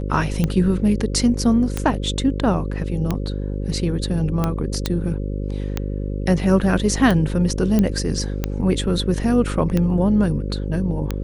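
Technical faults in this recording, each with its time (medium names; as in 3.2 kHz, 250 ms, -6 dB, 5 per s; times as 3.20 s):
buzz 50 Hz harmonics 11 -25 dBFS
tick 45 rpm -8 dBFS
4.86 s: pop -6 dBFS
7.79 s: pop -7 dBFS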